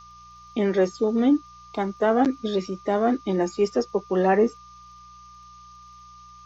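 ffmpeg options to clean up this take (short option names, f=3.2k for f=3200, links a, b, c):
-af "adeclick=t=4,bandreject=f=59.9:t=h:w=4,bandreject=f=119.8:t=h:w=4,bandreject=f=179.7:t=h:w=4,bandreject=f=1.2k:w=30,afftdn=nr=21:nf=-47"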